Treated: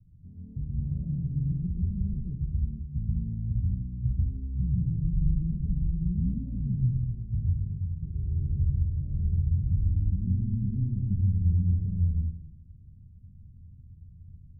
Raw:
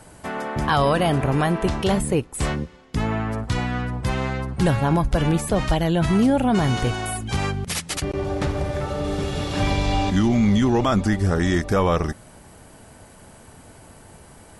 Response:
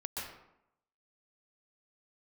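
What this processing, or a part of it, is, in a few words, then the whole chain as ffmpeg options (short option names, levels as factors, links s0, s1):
club heard from the street: -filter_complex "[0:a]alimiter=limit=0.211:level=0:latency=1,lowpass=f=150:w=0.5412,lowpass=f=150:w=1.3066[s0];[1:a]atrim=start_sample=2205[s1];[s0][s1]afir=irnorm=-1:irlink=0,volume=0.891"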